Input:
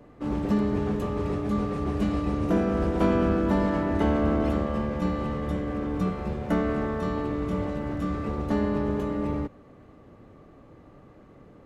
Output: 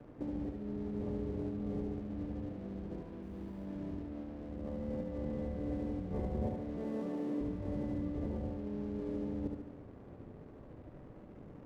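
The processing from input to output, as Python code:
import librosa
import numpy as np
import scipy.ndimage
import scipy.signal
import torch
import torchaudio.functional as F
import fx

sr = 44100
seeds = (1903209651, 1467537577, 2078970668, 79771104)

y = fx.bessel_highpass(x, sr, hz=250.0, order=8, at=(6.77, 7.41))
y = fx.over_compress(y, sr, threshold_db=-34.0, ratio=-1.0)
y = fx.quant_dither(y, sr, seeds[0], bits=8, dither='triangular', at=(3.22, 3.65))
y = np.convolve(y, np.full(33, 1.0 / 33))[:len(y)]
y = np.sign(y) * np.maximum(np.abs(y) - 10.0 ** (-52.0 / 20.0), 0.0)
y = fx.echo_feedback(y, sr, ms=72, feedback_pct=54, wet_db=-4.0)
y = y * librosa.db_to_amplitude(-5.5)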